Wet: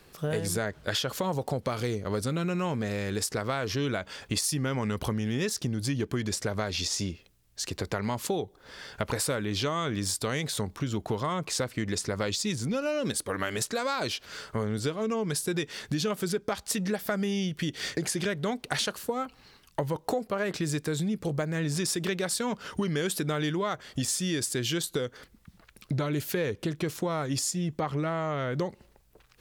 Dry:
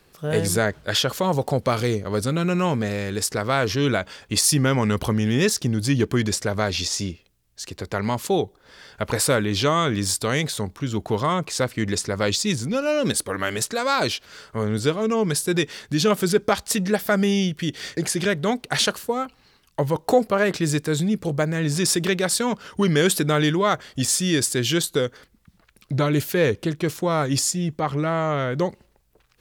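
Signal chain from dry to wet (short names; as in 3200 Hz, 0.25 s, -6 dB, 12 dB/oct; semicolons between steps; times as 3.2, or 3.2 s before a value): compressor 5:1, threshold -29 dBFS, peak gain reduction 15.5 dB; gain +1.5 dB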